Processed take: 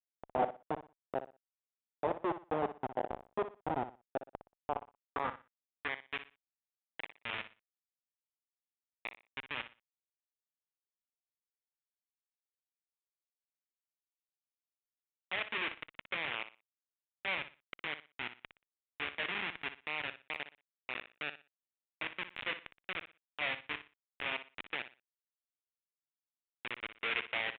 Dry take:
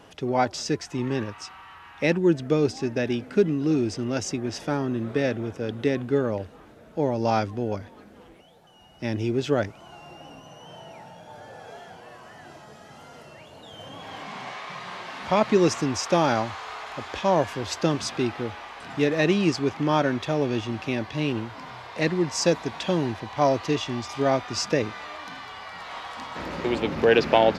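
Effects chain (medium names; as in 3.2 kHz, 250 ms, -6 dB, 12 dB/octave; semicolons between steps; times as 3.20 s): Schmitt trigger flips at -18 dBFS; resampled via 8 kHz; on a send: feedback delay 60 ms, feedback 25%, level -12 dB; on the sum: band-pass sweep 730 Hz -> 2.4 kHz, 4.65–6.13 s; trim +6 dB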